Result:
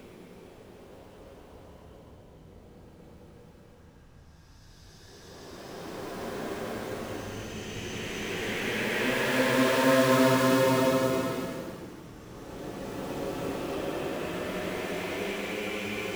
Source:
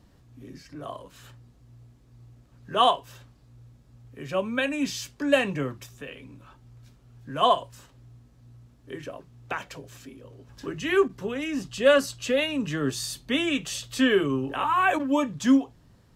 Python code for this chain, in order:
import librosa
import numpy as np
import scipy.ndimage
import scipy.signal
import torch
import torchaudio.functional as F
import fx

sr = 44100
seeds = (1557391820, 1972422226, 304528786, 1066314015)

y = fx.cycle_switch(x, sr, every=3, mode='inverted')
y = fx.paulstretch(y, sr, seeds[0], factor=12.0, window_s=0.25, from_s=10.14)
y = F.gain(torch.from_numpy(y), -3.0).numpy()